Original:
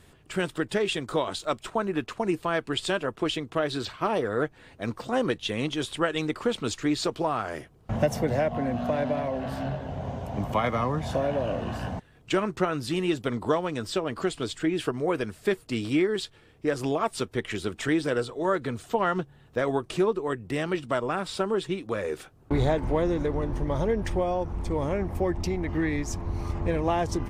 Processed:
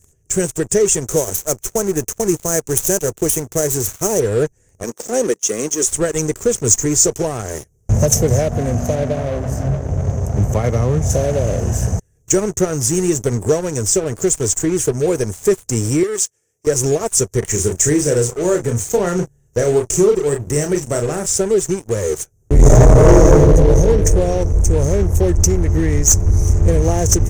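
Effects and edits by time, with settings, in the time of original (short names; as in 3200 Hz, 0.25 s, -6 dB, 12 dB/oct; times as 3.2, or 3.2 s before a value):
1.05–4.2 switching dead time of 0.075 ms
4.83–5.87 HPF 220 Hz 24 dB/oct
8.95–11.1 high shelf 4000 Hz -10 dB
16.03–16.67 HPF 850 Hz 6 dB/oct
17.39–21.26 doubler 34 ms -6.5 dB
22.54–23.32 reverb throw, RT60 2.5 s, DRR -10.5 dB
whole clip: EQ curve 100 Hz 0 dB, 280 Hz -15 dB, 420 Hz -5 dB, 1100 Hz -24 dB, 1900 Hz -16 dB, 4100 Hz -28 dB, 6200 Hz +13 dB, 9500 Hz +3 dB; sample leveller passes 3; gain +7.5 dB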